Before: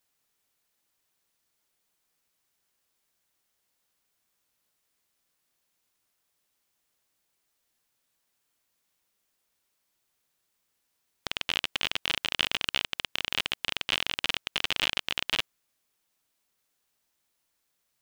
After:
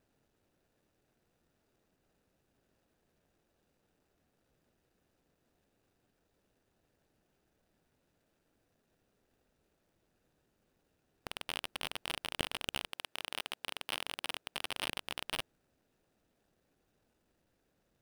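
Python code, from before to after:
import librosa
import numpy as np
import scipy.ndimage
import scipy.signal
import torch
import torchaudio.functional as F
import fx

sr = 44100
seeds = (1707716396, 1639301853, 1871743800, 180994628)

y = scipy.signal.medfilt(x, 41)
y = fx.highpass(y, sr, hz=fx.line((12.91, 360.0), (14.95, 120.0)), slope=6, at=(12.91, 14.95), fade=0.02)
y = y * 10.0 ** (14.0 / 20.0)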